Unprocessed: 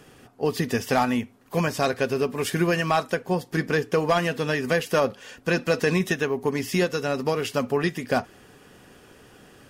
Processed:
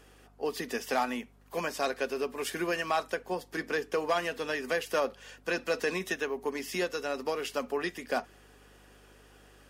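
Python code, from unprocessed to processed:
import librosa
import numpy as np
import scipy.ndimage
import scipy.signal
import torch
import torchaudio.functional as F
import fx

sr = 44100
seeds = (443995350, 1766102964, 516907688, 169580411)

y = scipy.signal.sosfilt(scipy.signal.bessel(8, 340.0, 'highpass', norm='mag', fs=sr, output='sos'), x)
y = fx.add_hum(y, sr, base_hz=50, snr_db=27)
y = y * 10.0 ** (-6.0 / 20.0)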